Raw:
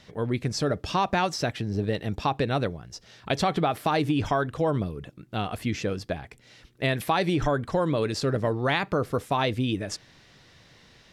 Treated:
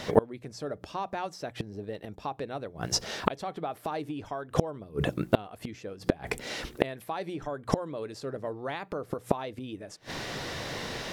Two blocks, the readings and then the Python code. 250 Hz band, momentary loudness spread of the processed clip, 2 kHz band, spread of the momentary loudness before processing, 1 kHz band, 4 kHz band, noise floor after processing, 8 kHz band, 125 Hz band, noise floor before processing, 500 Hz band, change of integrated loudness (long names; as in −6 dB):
−6.0 dB, 9 LU, −7.0 dB, 9 LU, −7.0 dB, −4.5 dB, −54 dBFS, +0.5 dB, −8.0 dB, −56 dBFS, −4.0 dB, −6.5 dB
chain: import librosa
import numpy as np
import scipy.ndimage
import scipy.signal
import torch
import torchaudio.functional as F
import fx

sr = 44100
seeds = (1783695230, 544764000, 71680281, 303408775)

p1 = fx.high_shelf(x, sr, hz=8000.0, db=9.5)
p2 = fx.hum_notches(p1, sr, base_hz=60, count=3)
p3 = fx.gate_flip(p2, sr, shuts_db=-24.0, range_db=-31)
p4 = fx.peak_eq(p3, sr, hz=600.0, db=9.0, octaves=2.8)
p5 = fx.rider(p4, sr, range_db=4, speed_s=0.5)
p6 = p4 + F.gain(torch.from_numpy(p5), 0.0).numpy()
y = F.gain(torch.from_numpy(p6), 6.0).numpy()